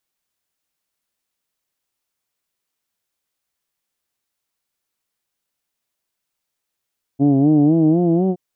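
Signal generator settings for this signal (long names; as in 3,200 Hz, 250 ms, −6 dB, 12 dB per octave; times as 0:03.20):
vowel from formants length 1.17 s, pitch 135 Hz, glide +5.5 semitones, vibrato 4 Hz, F1 300 Hz, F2 710 Hz, F3 3,000 Hz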